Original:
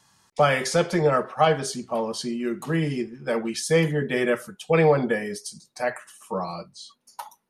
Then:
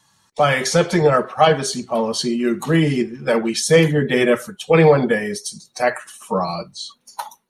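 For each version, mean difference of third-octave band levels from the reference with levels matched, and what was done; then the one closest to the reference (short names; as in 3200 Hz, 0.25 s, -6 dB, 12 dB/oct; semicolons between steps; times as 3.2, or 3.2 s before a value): 1.5 dB: bin magnitudes rounded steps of 15 dB; bell 4600 Hz +5.5 dB 0.81 oct; notch 4900 Hz, Q 6.1; AGC gain up to 7.5 dB; gain +1 dB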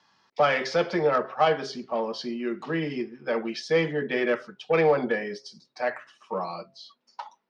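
3.5 dB: three-band isolator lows -15 dB, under 200 Hz, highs -23 dB, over 3500 Hz; de-hum 134.1 Hz, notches 5; in parallel at -9 dB: soft clip -20 dBFS, distortion -10 dB; on the sum: synth low-pass 5300 Hz, resonance Q 3.3; gain -3.5 dB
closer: first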